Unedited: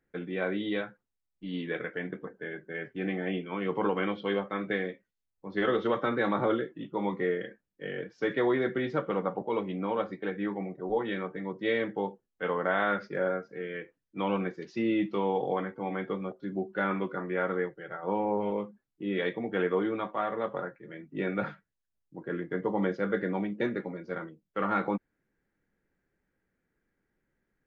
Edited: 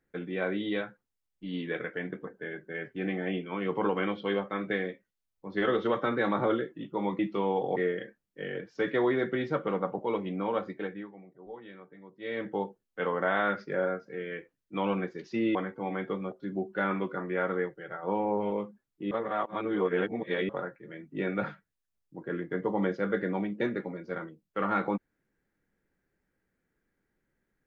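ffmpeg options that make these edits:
-filter_complex "[0:a]asplit=8[a][b][c][d][e][f][g][h];[a]atrim=end=7.192[i];[b]atrim=start=14.978:end=15.552[j];[c]atrim=start=7.188:end=10.52,asetpts=PTS-STARTPTS,afade=t=out:st=3.002:d=0.33:silence=0.177828[k];[d]atrim=start=10.52:end=11.63,asetpts=PTS-STARTPTS,volume=-15dB[l];[e]atrim=start=11.63:end=14.982,asetpts=PTS-STARTPTS,afade=t=in:d=0.33:silence=0.177828[m];[f]atrim=start=15.548:end=19.112[n];[g]atrim=start=19.108:end=20.492,asetpts=PTS-STARTPTS,areverse[o];[h]atrim=start=20.488[p];[i][j]acrossfade=d=0.004:c1=hsin:c2=hsin[q];[k][l][m]concat=n=3:v=0:a=1[r];[q][r]acrossfade=d=0.004:c1=hsin:c2=hsin[s];[s][n]acrossfade=d=0.004:c1=hsin:c2=hsin[t];[t][o]acrossfade=d=0.004:c1=hsin:c2=hsin[u];[u][p]acrossfade=d=0.004:c1=hsin:c2=hsin"

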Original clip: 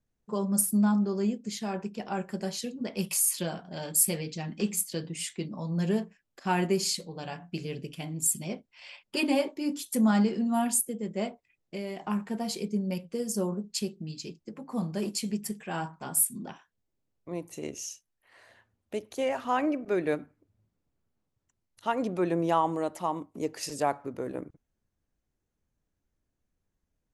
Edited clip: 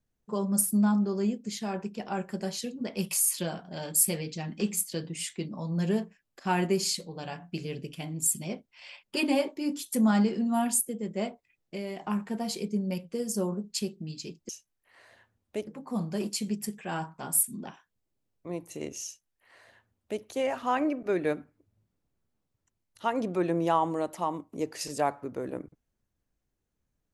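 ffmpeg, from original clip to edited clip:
-filter_complex "[0:a]asplit=3[a][b][c];[a]atrim=end=14.492[d];[b]atrim=start=17.868:end=19.052[e];[c]atrim=start=14.488[f];[d][e]acrossfade=d=0.004:c1=hsin:c2=hsin[g];[g][f]acrossfade=d=0.004:c1=hsin:c2=hsin"

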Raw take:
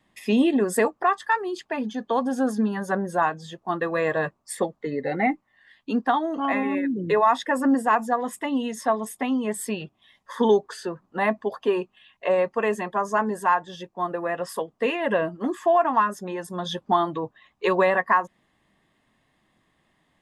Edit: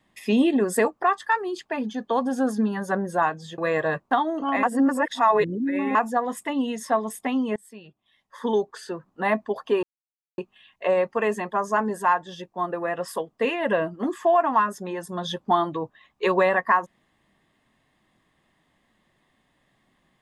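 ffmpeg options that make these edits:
-filter_complex "[0:a]asplit=7[a][b][c][d][e][f][g];[a]atrim=end=3.582[h];[b]atrim=start=3.888:end=4.422[i];[c]atrim=start=6.068:end=6.592[j];[d]atrim=start=6.588:end=7.912,asetpts=PTS-STARTPTS,areverse[k];[e]atrim=start=7.908:end=9.52,asetpts=PTS-STARTPTS,afade=t=out:st=1.608:d=0.004:c=hsin:silence=0.0668344[l];[f]atrim=start=9.52:end=11.79,asetpts=PTS-STARTPTS,afade=t=in:d=1.72:silence=0.0668344,afade=t=out:st=2.266:d=0.004:c=hsin,apad=pad_dur=0.55[m];[g]atrim=start=11.79,asetpts=PTS-STARTPTS,afade=t=in:d=0.004:c=hsin[n];[h][i]acrossfade=d=0.004:c1=hsin:c2=hsin[o];[o][j]acrossfade=d=0.004:c1=hsin:c2=hsin[p];[p][k]acrossfade=d=0.004:c1=hsin:c2=hsin[q];[l][m][n]concat=n=3:v=0:a=1[r];[q][r]acrossfade=d=0.004:c1=hsin:c2=hsin"

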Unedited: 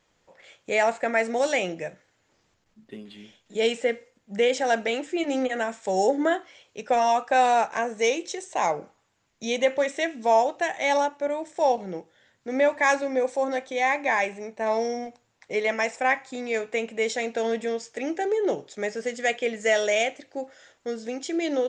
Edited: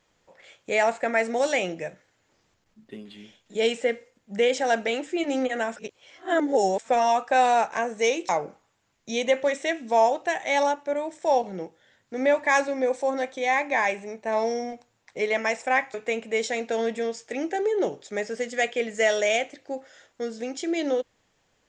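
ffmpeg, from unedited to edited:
-filter_complex "[0:a]asplit=5[a][b][c][d][e];[a]atrim=end=5.762[f];[b]atrim=start=5.758:end=6.892,asetpts=PTS-STARTPTS,areverse[g];[c]atrim=start=6.888:end=8.292[h];[d]atrim=start=8.628:end=16.282[i];[e]atrim=start=16.598[j];[f][g]acrossfade=d=0.004:c1=hsin:c2=hsin[k];[k][h]acrossfade=d=0.004:c1=hsin:c2=hsin[l];[l][i]acrossfade=d=0.004:c1=hsin:c2=hsin[m];[m][j]acrossfade=d=0.004:c1=hsin:c2=hsin"

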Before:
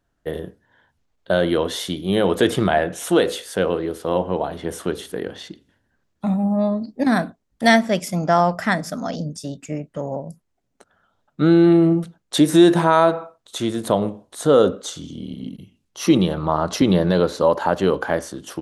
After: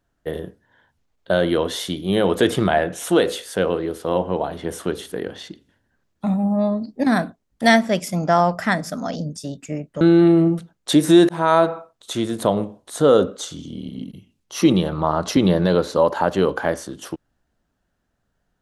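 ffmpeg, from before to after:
-filter_complex "[0:a]asplit=3[a][b][c];[a]atrim=end=10.012[d];[b]atrim=start=11.458:end=12.74,asetpts=PTS-STARTPTS,afade=t=out:st=1.278:d=0.004:c=hsin[e];[c]atrim=start=12.74,asetpts=PTS-STARTPTS,afade=t=in:d=0.31:c=qsin[f];[e][f]concat=n=2:v=0:a=1[g];[d][g]acrossfade=d=0.004:c1=hsin:c2=hsin"

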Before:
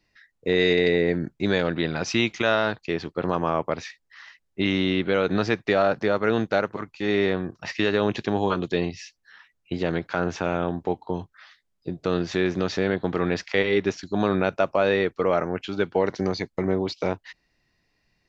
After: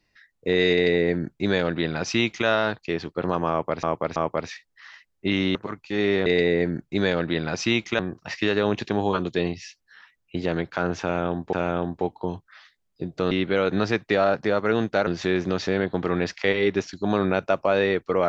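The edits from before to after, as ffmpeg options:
-filter_complex "[0:a]asplit=9[a][b][c][d][e][f][g][h][i];[a]atrim=end=3.832[j];[b]atrim=start=3.498:end=3.832[k];[c]atrim=start=3.498:end=4.892[l];[d]atrim=start=6.648:end=7.362[m];[e]atrim=start=0.738:end=2.472[n];[f]atrim=start=7.358:end=10.902[o];[g]atrim=start=10.388:end=12.172[p];[h]atrim=start=4.888:end=6.652[q];[i]atrim=start=12.168[r];[j][k]acrossfade=d=0.004:c1=hsin:c2=hsin[s];[s][l]acrossfade=d=0.004:c1=hsin:c2=hsin[t];[t][m]acrossfade=d=0.004:c1=hsin:c2=hsin[u];[u][n]acrossfade=d=0.004:c1=hsin:c2=hsin[v];[v][o]acrossfade=d=0.004:c1=hsin:c2=hsin[w];[w][p]acrossfade=d=0.004:c1=hsin:c2=hsin[x];[x][q]acrossfade=d=0.004:c1=hsin:c2=hsin[y];[y][r]acrossfade=d=0.004:c1=hsin:c2=hsin"

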